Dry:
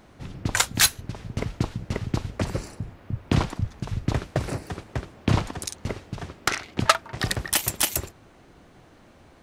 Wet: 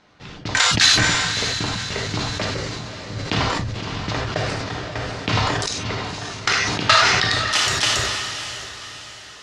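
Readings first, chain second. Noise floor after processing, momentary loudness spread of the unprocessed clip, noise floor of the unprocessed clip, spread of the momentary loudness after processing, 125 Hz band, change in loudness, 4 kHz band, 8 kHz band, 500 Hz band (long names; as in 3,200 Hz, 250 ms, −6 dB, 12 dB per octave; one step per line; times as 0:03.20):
−40 dBFS, 13 LU, −53 dBFS, 17 LU, +1.5 dB, +6.5 dB, +11.0 dB, +3.5 dB, +5.5 dB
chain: dynamic equaliser 180 Hz, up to −4 dB, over −35 dBFS, Q 1
leveller curve on the samples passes 1
reverb reduction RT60 0.52 s
spectral tilt +2.5 dB per octave
in parallel at −2 dB: brickwall limiter −5 dBFS, peak gain reduction 9 dB
on the sum: low-pass filter 5,500 Hz 24 dB per octave
on a send: feedback delay with all-pass diffusion 578 ms, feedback 46%, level −7.5 dB
on the sum: reverb whose tail is shaped and stops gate 120 ms flat, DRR −0.5 dB
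level that may fall only so fast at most 23 dB per second
level −6 dB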